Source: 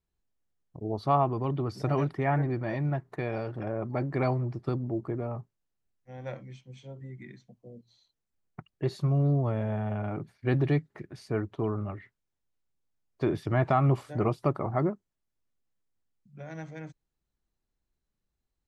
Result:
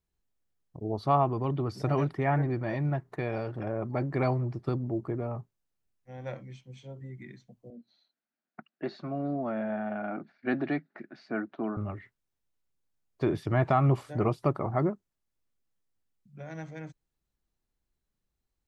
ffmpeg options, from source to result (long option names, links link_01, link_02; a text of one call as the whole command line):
ffmpeg -i in.wav -filter_complex "[0:a]asettb=1/sr,asplit=3[link_01][link_02][link_03];[link_01]atrim=end=7.704[link_04];[link_02]atrim=start=7.7:end=11.77,asetpts=PTS-STARTPTS,afade=type=in:duration=0.004:curve=qsin,afade=type=out:start_time=4.066:duration=0.004:curve=qsin,highpass=frequency=220:width=0.5412,highpass=frequency=220:width=1.3066,equalizer=frequency=230:width_type=q:width=4:gain=6,equalizer=frequency=440:width_type=q:width=4:gain=-9,equalizer=frequency=680:width_type=q:width=4:gain=5,equalizer=frequency=1000:width_type=q:width=4:gain=-5,equalizer=frequency=1500:width_type=q:width=4:gain=7,equalizer=frequency=3200:width_type=q:width=4:gain=-6,lowpass=frequency=4300:width=0.5412,lowpass=frequency=4300:width=1.3066[link_05];[link_03]atrim=start=11.766[link_06];[link_04][link_05]acrossfade=duration=0.004:curve1=hsin:curve2=qsin[link_07];[link_07][link_06]acrossfade=duration=0.004:curve1=qsin:curve2=hsin" out.wav